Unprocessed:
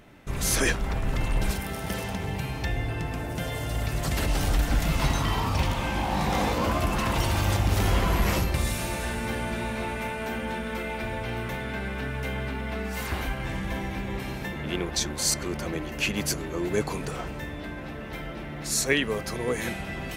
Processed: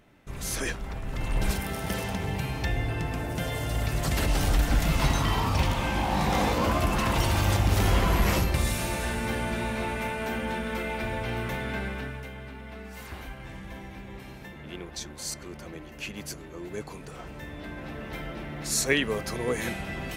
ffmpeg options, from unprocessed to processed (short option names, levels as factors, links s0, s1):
-af "volume=3.16,afade=t=in:st=1.09:d=0.42:silence=0.421697,afade=t=out:st=11.78:d=0.51:silence=0.298538,afade=t=in:st=17.07:d=0.91:silence=0.334965"